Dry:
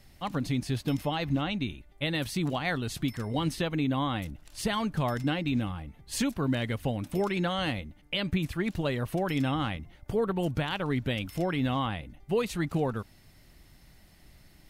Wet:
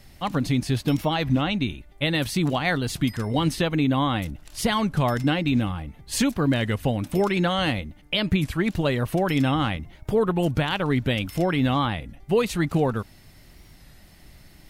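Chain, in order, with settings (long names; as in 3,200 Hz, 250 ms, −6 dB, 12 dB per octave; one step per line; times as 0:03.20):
wow of a warped record 33 1/3 rpm, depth 100 cents
level +6.5 dB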